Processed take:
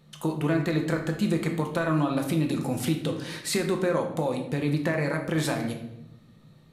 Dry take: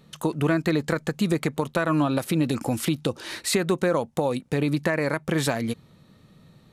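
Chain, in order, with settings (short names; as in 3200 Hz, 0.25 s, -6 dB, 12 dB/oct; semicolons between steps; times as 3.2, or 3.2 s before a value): shoebox room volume 250 m³, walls mixed, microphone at 0.82 m; gain -5 dB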